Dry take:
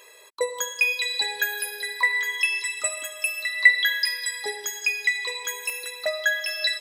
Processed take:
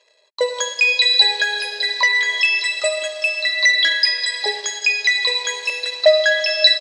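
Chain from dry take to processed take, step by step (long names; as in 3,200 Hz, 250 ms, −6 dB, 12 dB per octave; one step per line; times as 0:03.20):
leveller curve on the samples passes 3
automatic gain control gain up to 5 dB
loudspeaker in its box 380–6,600 Hz, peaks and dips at 610 Hz +10 dB, 1,300 Hz −6 dB, 4,300 Hz +10 dB
level −6.5 dB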